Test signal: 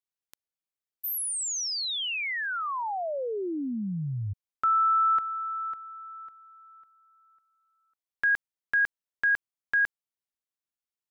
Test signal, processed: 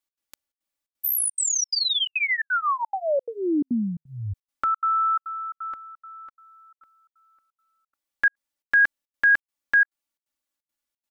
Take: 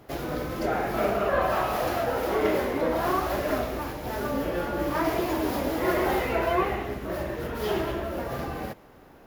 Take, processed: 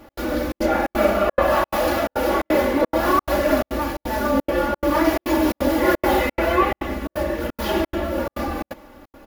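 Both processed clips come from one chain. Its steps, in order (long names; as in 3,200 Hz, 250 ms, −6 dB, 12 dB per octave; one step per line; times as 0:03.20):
comb filter 3.5 ms, depth 95%
gate pattern "x.xxxx.xx" 174 BPM −60 dB
level +4.5 dB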